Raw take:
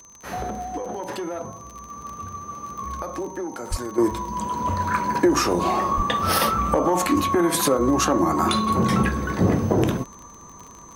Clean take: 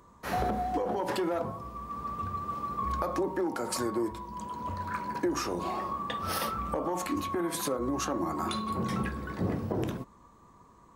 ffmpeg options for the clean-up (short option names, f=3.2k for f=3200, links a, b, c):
-filter_complex "[0:a]adeclick=t=4,bandreject=f=6.2k:w=30,asplit=3[a][b][c];[a]afade=t=out:st=3.7:d=0.02[d];[b]highpass=f=140:w=0.5412,highpass=f=140:w=1.3066,afade=t=in:st=3.7:d=0.02,afade=t=out:st=3.82:d=0.02[e];[c]afade=t=in:st=3.82:d=0.02[f];[d][e][f]amix=inputs=3:normalize=0,asplit=3[g][h][i];[g]afade=t=out:st=5.96:d=0.02[j];[h]highpass=f=140:w=0.5412,highpass=f=140:w=1.3066,afade=t=in:st=5.96:d=0.02,afade=t=out:st=6.08:d=0.02[k];[i]afade=t=in:st=6.08:d=0.02[l];[j][k][l]amix=inputs=3:normalize=0,asetnsamples=n=441:p=0,asendcmd='3.98 volume volume -11.5dB',volume=0dB"